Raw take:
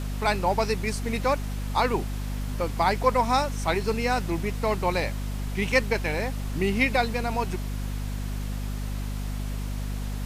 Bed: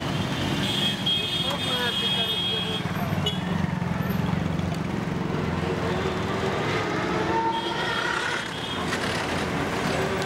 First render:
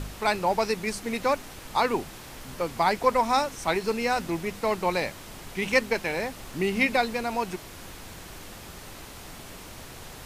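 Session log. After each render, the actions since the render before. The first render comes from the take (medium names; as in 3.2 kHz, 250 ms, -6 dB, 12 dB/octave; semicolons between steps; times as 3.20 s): de-hum 50 Hz, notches 5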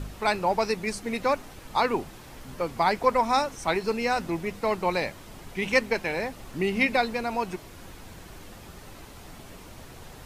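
noise reduction 6 dB, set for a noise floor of -44 dBFS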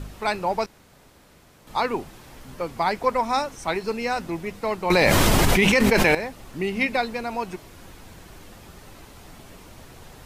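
0.66–1.67 s: room tone; 4.90–6.15 s: level flattener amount 100%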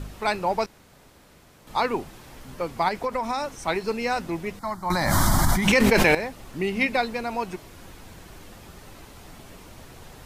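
2.88–3.60 s: compression, threshold -22 dBFS; 4.59–5.68 s: static phaser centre 1.1 kHz, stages 4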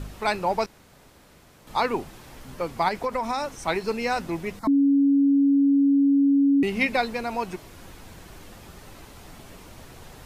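4.67–6.63 s: bleep 279 Hz -15.5 dBFS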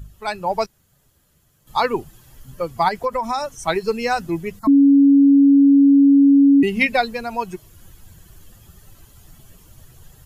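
expander on every frequency bin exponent 1.5; level rider gain up to 7.5 dB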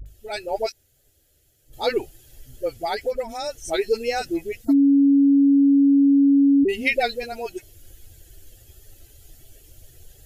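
static phaser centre 440 Hz, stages 4; phase dispersion highs, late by 60 ms, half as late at 520 Hz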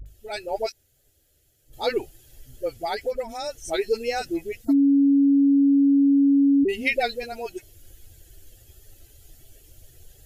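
trim -2 dB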